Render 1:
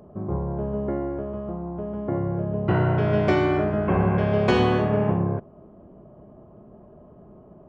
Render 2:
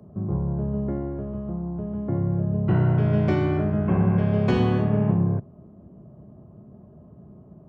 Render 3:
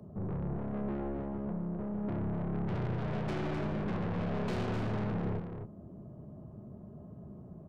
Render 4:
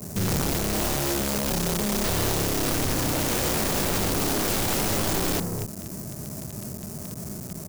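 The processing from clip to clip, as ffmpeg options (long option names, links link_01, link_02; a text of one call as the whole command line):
ffmpeg -i in.wav -filter_complex "[0:a]highpass=85,bass=frequency=250:gain=14,treble=frequency=4000:gain=0,acrossover=split=120|540[link_01][link_02][link_03];[link_01]alimiter=limit=-20dB:level=0:latency=1[link_04];[link_04][link_02][link_03]amix=inputs=3:normalize=0,volume=-6.5dB" out.wav
ffmpeg -i in.wav -filter_complex "[0:a]aeval=exprs='(tanh(39.8*val(0)+0.25)-tanh(0.25))/39.8':channel_layout=same,asplit=2[link_01][link_02];[link_02]aecho=0:1:256:0.473[link_03];[link_01][link_03]amix=inputs=2:normalize=0,volume=-1.5dB" out.wav
ffmpeg -i in.wav -filter_complex "[0:a]asplit=2[link_01][link_02];[link_02]acrusher=bits=7:mix=0:aa=0.000001,volume=-7dB[link_03];[link_01][link_03]amix=inputs=2:normalize=0,aexciter=amount=12.1:drive=3:freq=5100,aeval=exprs='(mod(26.6*val(0)+1,2)-1)/26.6':channel_layout=same,volume=8dB" out.wav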